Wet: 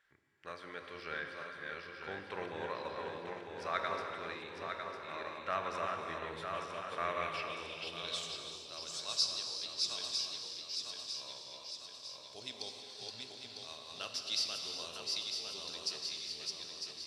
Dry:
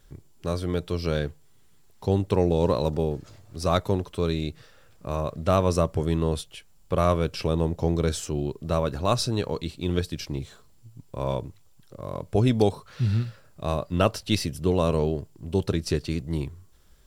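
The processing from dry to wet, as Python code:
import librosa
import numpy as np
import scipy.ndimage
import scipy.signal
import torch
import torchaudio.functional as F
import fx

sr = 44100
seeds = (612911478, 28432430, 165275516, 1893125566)

y = fx.reverse_delay_fb(x, sr, ms=476, feedback_pct=71, wet_db=-3.0)
y = fx.filter_sweep_bandpass(y, sr, from_hz=1800.0, to_hz=4800.0, start_s=6.98, end_s=8.63, q=3.1)
y = fx.rev_gated(y, sr, seeds[0], gate_ms=440, shape='flat', drr_db=4.0)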